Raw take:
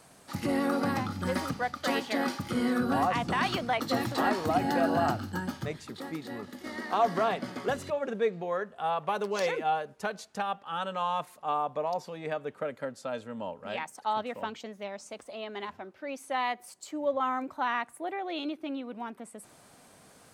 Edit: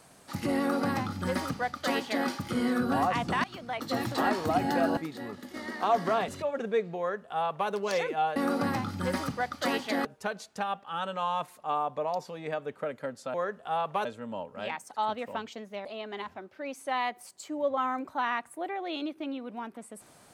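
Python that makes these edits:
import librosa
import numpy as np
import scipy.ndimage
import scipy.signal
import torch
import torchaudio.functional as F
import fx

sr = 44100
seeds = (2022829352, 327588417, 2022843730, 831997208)

y = fx.edit(x, sr, fx.duplicate(start_s=0.58, length_s=1.69, to_s=9.84),
    fx.fade_in_from(start_s=3.44, length_s=0.65, floor_db=-20.0),
    fx.cut(start_s=4.97, length_s=1.1),
    fx.cut(start_s=7.38, length_s=0.38),
    fx.duplicate(start_s=8.47, length_s=0.71, to_s=13.13),
    fx.cut(start_s=14.93, length_s=0.35), tone=tone)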